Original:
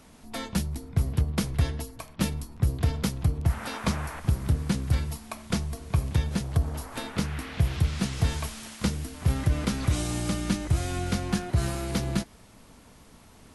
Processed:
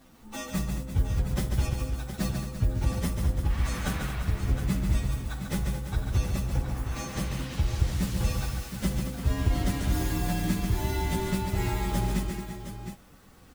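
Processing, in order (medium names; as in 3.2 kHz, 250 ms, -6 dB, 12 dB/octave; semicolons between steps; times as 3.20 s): frequency axis rescaled in octaves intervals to 120%; multi-tap echo 58/142/223/342/539/715 ms -14/-6/-10.5/-11.5/-20/-9.5 dB; trim +1 dB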